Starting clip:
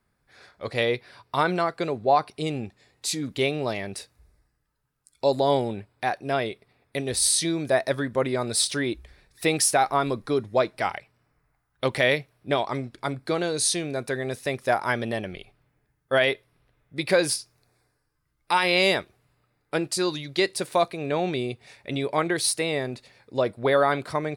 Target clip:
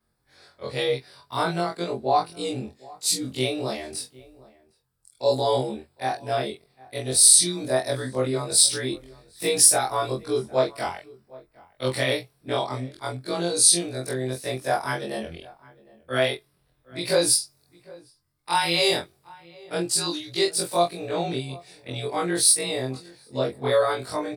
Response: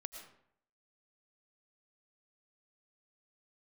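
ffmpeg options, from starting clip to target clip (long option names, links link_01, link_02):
-filter_complex "[0:a]afftfilt=real='re':imag='-im':win_size=2048:overlap=0.75,highshelf=frequency=3800:gain=6.5,asplit=2[link_01][link_02];[link_02]adelay=23,volume=-4dB[link_03];[link_01][link_03]amix=inputs=2:normalize=0,asplit=2[link_04][link_05];[link_05]adelay=758,volume=-22dB,highshelf=frequency=4000:gain=-17.1[link_06];[link_04][link_06]amix=inputs=2:normalize=0,adynamicequalizer=threshold=0.0112:dfrequency=4800:dqfactor=0.7:tfrequency=4800:tqfactor=0.7:attack=5:release=100:ratio=0.375:range=2.5:mode=boostabove:tftype=highshelf"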